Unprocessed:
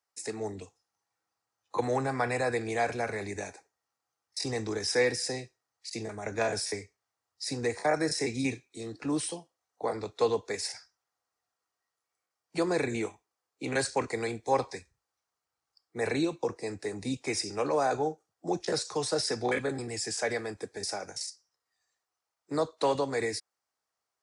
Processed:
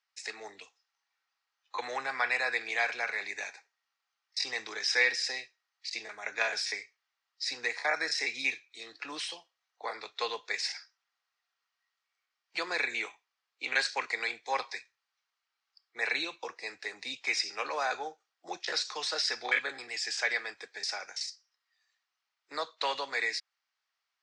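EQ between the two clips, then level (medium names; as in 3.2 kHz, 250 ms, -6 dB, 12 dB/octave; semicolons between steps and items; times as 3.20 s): band-pass filter 2.6 kHz, Q 0.79; distance through air 160 m; tilt EQ +3.5 dB/octave; +5.5 dB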